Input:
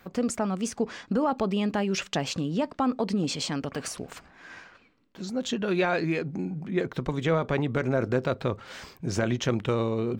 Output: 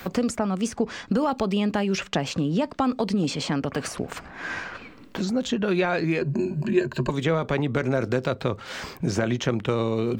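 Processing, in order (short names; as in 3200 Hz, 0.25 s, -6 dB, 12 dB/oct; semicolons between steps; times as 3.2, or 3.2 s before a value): 6.21–7.1 ripple EQ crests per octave 1.4, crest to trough 17 dB; three-band squash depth 70%; gain +2 dB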